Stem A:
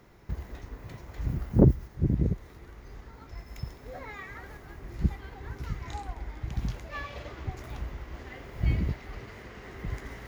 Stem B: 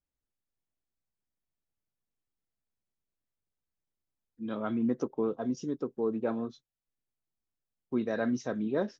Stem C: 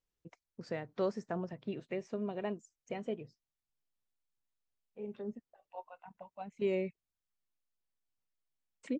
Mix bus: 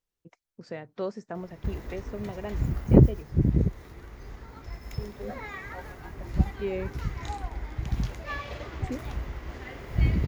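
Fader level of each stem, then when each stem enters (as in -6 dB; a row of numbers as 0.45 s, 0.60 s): +3.0 dB, mute, +1.0 dB; 1.35 s, mute, 0.00 s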